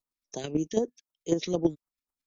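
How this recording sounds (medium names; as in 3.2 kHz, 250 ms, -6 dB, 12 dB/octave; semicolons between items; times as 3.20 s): phasing stages 2, 3.9 Hz, lowest notch 730–2900 Hz; chopped level 9.1 Hz, depth 60%, duty 15%; AAC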